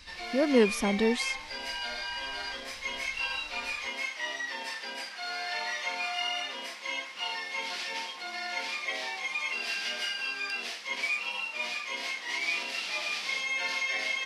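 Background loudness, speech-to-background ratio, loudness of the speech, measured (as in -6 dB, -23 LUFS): -32.5 LUFS, 5.0 dB, -27.5 LUFS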